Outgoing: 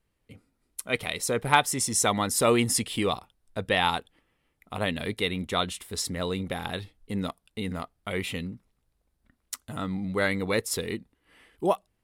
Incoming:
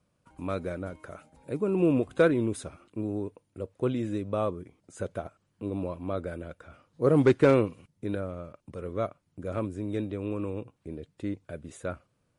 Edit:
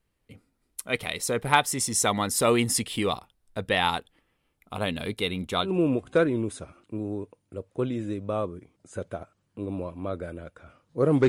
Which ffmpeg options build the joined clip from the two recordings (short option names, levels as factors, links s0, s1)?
-filter_complex "[0:a]asettb=1/sr,asplit=3[s0][s1][s2];[s0]atrim=end=4.364[s3];[s1]atrim=start=4.36:end=5.71,asetpts=PTS-STARTPTS,afade=t=in:d=0.004:c=qsin,afade=t=out:st=1.346:d=0.004:c=qsin,bandreject=f=1900:w=6.6[s4];[s2]atrim=start=5.706[s5];[s3][s4]acrossfade=d=0.004:c1=hsin:c2=qsin[s6];[s6][s5]acrossfade=d=0.004:c1=qsin:c2=hsin,apad=whole_dur=11.28,atrim=end=11.28,atrim=end=5.71,asetpts=PTS-STARTPTS[s7];[1:a]atrim=start=1.65:end=7.32,asetpts=PTS-STARTPTS[s8];[s7][s8]acrossfade=d=0.1:c1=tri:c2=tri"